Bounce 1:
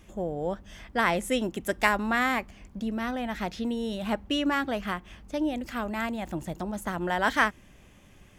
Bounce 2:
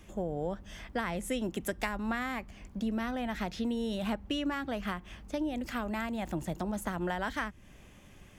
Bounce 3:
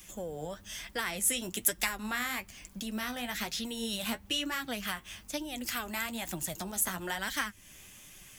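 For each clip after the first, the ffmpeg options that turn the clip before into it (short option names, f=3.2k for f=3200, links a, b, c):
-filter_complex "[0:a]acrossover=split=170[a][b];[b]acompressor=threshold=-31dB:ratio=6[c];[a][c]amix=inputs=2:normalize=0"
-filter_complex "[0:a]flanger=delay=5:depth=8.4:regen=36:speed=1.1:shape=triangular,acrossover=split=720[a][b];[b]crystalizer=i=9:c=0[c];[a][c]amix=inputs=2:normalize=0,volume=-1.5dB"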